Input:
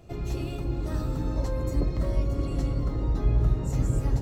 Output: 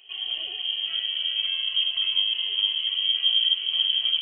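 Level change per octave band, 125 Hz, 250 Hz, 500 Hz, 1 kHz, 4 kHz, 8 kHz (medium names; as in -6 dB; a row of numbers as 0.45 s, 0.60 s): under -40 dB, under -30 dB, under -20 dB, under -10 dB, +33.0 dB, under -35 dB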